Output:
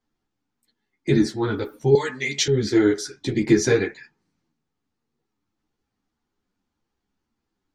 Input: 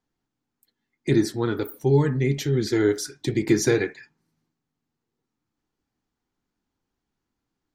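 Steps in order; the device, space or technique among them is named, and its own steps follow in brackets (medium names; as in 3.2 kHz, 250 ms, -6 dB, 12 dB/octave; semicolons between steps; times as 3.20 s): string-machine ensemble chorus (three-phase chorus; low-pass 7.3 kHz 12 dB/octave); 1.95–2.48 s: frequency weighting ITU-R 468; trim +5 dB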